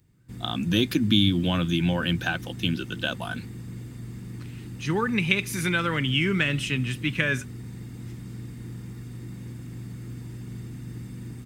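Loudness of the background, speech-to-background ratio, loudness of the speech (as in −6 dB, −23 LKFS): −39.0 LKFS, 13.5 dB, −25.5 LKFS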